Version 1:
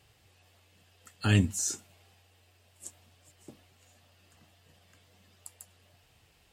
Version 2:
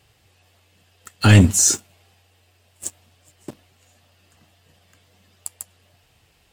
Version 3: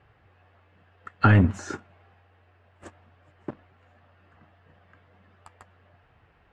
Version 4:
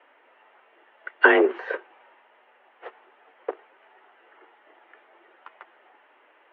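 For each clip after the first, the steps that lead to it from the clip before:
sample leveller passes 2; gain +8.5 dB
compressor 2.5:1, threshold -17 dBFS, peak gain reduction 7 dB; synth low-pass 1500 Hz, resonance Q 1.7
mistuned SSB +150 Hz 210–3100 Hz; gain +5.5 dB

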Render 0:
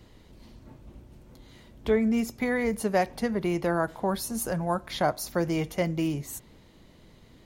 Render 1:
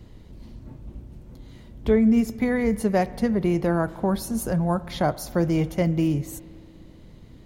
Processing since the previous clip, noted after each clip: low shelf 360 Hz +10.5 dB; spring tank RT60 2.5 s, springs 59 ms, chirp 25 ms, DRR 18 dB; gain -1 dB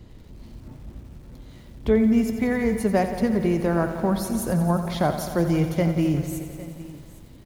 echo 0.81 s -18 dB; lo-fi delay 88 ms, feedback 80%, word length 8-bit, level -11 dB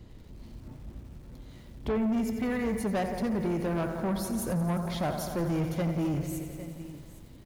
soft clip -21 dBFS, distortion -11 dB; gain -3.5 dB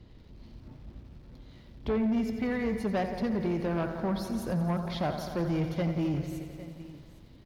added harmonics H 3 -20 dB, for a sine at -24.5 dBFS; resonant high shelf 6100 Hz -8.5 dB, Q 1.5

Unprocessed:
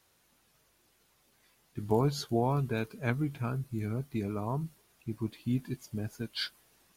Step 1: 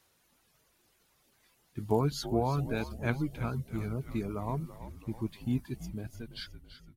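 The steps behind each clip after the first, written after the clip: ending faded out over 1.38 s; reverb removal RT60 0.52 s; frequency-shifting echo 0.332 s, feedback 59%, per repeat -72 Hz, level -12.5 dB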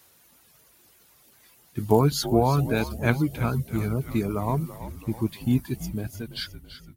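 HPF 46 Hz; high shelf 11000 Hz +11.5 dB; gain +8.5 dB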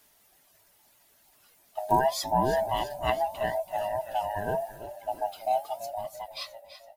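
band-swap scrambler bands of 500 Hz; flange 0.81 Hz, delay 6.4 ms, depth 7.1 ms, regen -78%

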